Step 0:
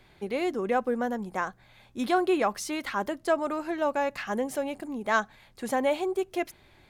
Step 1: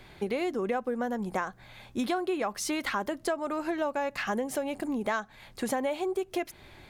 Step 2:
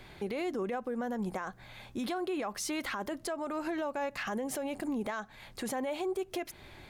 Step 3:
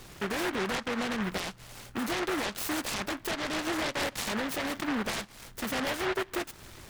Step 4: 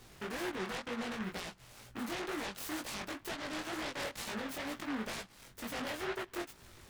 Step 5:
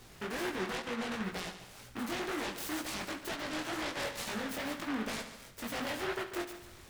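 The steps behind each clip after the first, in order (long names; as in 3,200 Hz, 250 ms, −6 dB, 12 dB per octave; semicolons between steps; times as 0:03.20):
downward compressor 6 to 1, threshold −34 dBFS, peak gain reduction 14.5 dB; level +6.5 dB
brickwall limiter −27 dBFS, peak gain reduction 9.5 dB
short delay modulated by noise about 1,200 Hz, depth 0.31 ms; level +3 dB
chorus effect 2.1 Hz, delay 16.5 ms, depth 6.7 ms; level −5 dB
echo machine with several playback heads 71 ms, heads first and second, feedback 41%, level −13.5 dB; level +2 dB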